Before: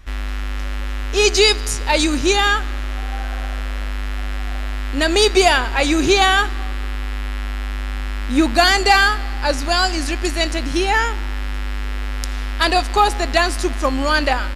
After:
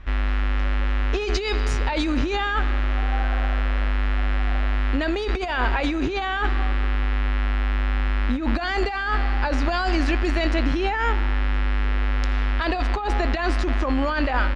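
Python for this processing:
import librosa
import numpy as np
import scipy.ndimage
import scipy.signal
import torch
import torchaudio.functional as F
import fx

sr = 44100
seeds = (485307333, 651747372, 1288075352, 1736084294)

y = scipy.signal.sosfilt(scipy.signal.butter(2, 2700.0, 'lowpass', fs=sr, output='sos'), x)
y = fx.over_compress(y, sr, threshold_db=-21.0, ratio=-1.0)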